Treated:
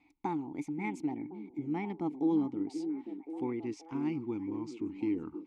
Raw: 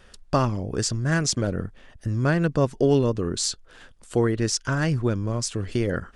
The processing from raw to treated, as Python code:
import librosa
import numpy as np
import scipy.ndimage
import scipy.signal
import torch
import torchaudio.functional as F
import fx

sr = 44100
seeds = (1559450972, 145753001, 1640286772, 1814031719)

y = fx.speed_glide(x, sr, from_pct=137, to_pct=88)
y = fx.vowel_filter(y, sr, vowel='u')
y = fx.echo_stepped(y, sr, ms=529, hz=270.0, octaves=0.7, feedback_pct=70, wet_db=-6.5)